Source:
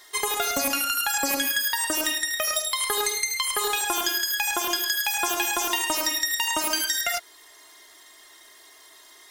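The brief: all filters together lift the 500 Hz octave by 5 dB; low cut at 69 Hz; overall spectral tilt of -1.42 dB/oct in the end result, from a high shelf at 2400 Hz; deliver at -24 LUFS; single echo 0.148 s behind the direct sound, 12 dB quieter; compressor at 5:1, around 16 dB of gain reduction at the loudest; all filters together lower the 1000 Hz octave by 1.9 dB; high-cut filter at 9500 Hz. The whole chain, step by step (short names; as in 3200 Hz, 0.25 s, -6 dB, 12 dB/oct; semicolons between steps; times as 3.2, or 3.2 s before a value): HPF 69 Hz; LPF 9500 Hz; bell 500 Hz +8.5 dB; bell 1000 Hz -4.5 dB; high shelf 2400 Hz -4.5 dB; compressor 5:1, threshold -41 dBFS; echo 0.148 s -12 dB; gain +17 dB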